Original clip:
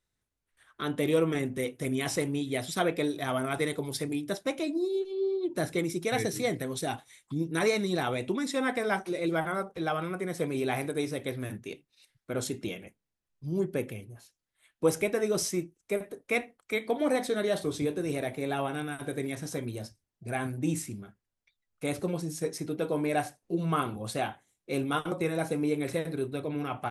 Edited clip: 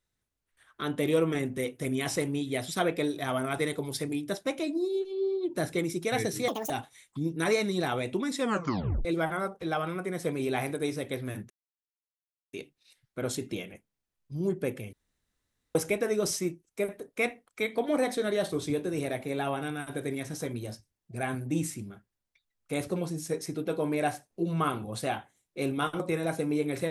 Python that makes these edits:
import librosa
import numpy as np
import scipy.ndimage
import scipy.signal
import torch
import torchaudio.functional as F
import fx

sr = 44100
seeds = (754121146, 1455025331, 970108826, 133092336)

y = fx.edit(x, sr, fx.speed_span(start_s=6.48, length_s=0.37, speed=1.68),
    fx.tape_stop(start_s=8.56, length_s=0.64),
    fx.insert_silence(at_s=11.65, length_s=1.03),
    fx.room_tone_fill(start_s=14.05, length_s=0.82), tone=tone)